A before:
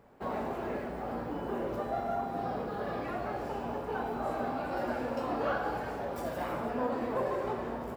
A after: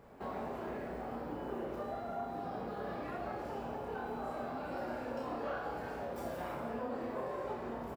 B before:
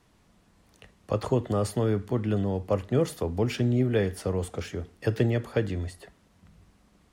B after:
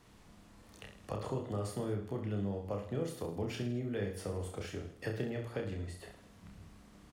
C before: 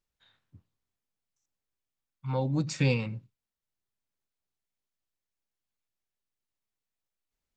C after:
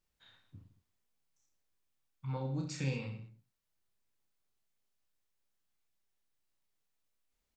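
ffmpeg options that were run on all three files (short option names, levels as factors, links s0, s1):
-af "acompressor=threshold=0.00398:ratio=2,aecho=1:1:30|66|109.2|161|223.2:0.631|0.398|0.251|0.158|0.1,volume=1.12"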